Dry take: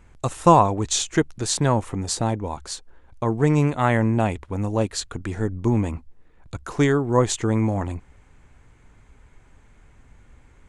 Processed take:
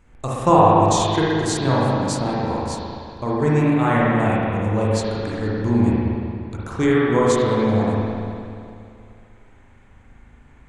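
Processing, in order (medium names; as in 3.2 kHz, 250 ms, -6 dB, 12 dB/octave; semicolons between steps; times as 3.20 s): spring tank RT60 2.5 s, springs 38/59 ms, chirp 40 ms, DRR -6.5 dB; trim -3.5 dB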